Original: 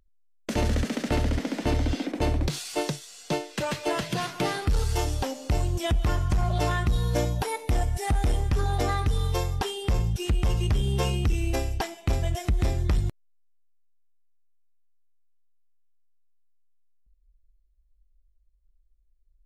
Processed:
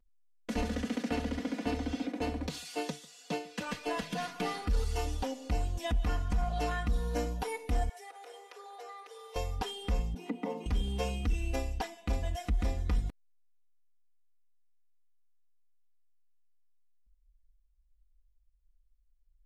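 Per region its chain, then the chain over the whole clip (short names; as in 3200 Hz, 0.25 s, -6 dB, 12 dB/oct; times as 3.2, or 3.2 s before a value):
0.62–3.67 HPF 90 Hz + echo 0.145 s -22 dB
7.89–9.36 Chebyshev high-pass 370 Hz, order 6 + compressor 3:1, threshold -41 dBFS
10.14–10.66 rippled Chebyshev high-pass 170 Hz, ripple 9 dB + bell 7500 Hz -5 dB 1 oct + small resonant body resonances 290/420/880/2000 Hz, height 14 dB, ringing for 30 ms
whole clip: high shelf 5200 Hz -5 dB; comb 4.1 ms, depth 96%; gain -9 dB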